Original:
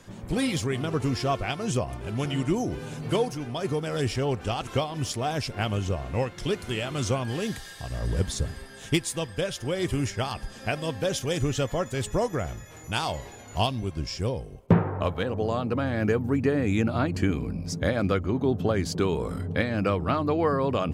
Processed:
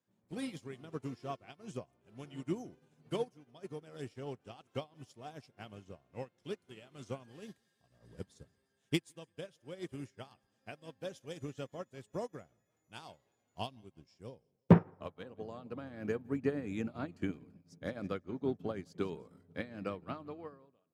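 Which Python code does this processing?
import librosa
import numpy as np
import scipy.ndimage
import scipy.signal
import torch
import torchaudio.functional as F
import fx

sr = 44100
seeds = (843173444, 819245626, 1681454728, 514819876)

p1 = fx.fade_out_tail(x, sr, length_s=0.87)
p2 = scipy.signal.sosfilt(scipy.signal.butter(2, 160.0, 'highpass', fs=sr, output='sos'), p1)
p3 = fx.low_shelf(p2, sr, hz=350.0, db=5.0)
p4 = p3 + fx.echo_feedback(p3, sr, ms=169, feedback_pct=60, wet_db=-20.5, dry=0)
p5 = fx.upward_expand(p4, sr, threshold_db=-36.0, expansion=2.5)
y = F.gain(torch.from_numpy(p5), -1.0).numpy()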